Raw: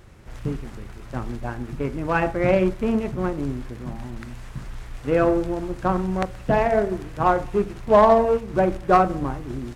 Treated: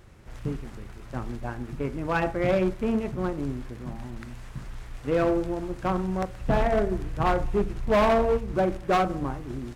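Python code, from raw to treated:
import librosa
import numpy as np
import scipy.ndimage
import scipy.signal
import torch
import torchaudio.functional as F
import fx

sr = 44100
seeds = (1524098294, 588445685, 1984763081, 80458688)

y = fx.low_shelf(x, sr, hz=100.0, db=12.0, at=(6.41, 8.54))
y = np.clip(y, -10.0 ** (-14.0 / 20.0), 10.0 ** (-14.0 / 20.0))
y = y * 10.0 ** (-3.5 / 20.0)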